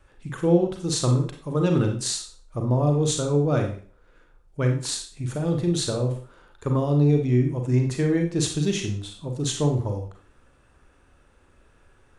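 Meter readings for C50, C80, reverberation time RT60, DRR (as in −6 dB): 6.5 dB, 12.0 dB, 0.45 s, 3.0 dB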